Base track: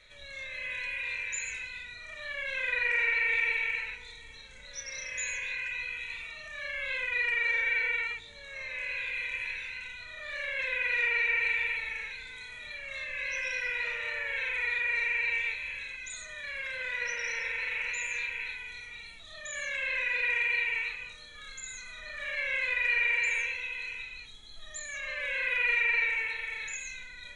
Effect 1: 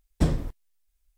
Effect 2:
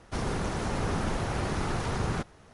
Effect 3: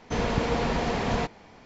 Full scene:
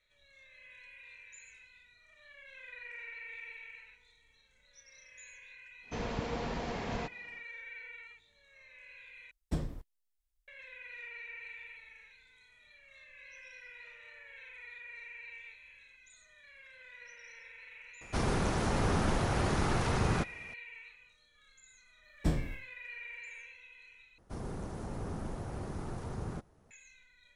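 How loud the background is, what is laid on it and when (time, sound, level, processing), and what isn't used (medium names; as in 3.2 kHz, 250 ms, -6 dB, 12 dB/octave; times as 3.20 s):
base track -18.5 dB
5.81 s: add 3 -10.5 dB, fades 0.10 s
9.31 s: replace with 1 -11.5 dB
18.01 s: add 2
22.04 s: add 1 -9 dB + spectral sustain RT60 0.37 s
24.18 s: replace with 2 -8.5 dB + peaking EQ 3 kHz -10.5 dB 2.9 oct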